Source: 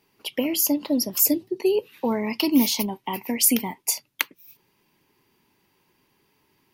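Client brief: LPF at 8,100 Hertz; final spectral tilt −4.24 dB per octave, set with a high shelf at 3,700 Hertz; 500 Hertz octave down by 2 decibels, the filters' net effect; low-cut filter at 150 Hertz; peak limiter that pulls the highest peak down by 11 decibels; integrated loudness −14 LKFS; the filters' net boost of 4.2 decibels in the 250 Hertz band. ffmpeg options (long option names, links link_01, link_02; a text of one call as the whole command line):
ffmpeg -i in.wav -af "highpass=150,lowpass=8100,equalizer=frequency=250:width_type=o:gain=7,equalizer=frequency=500:width_type=o:gain=-6,highshelf=frequency=3700:gain=-4.5,volume=12dB,alimiter=limit=-4dB:level=0:latency=1" out.wav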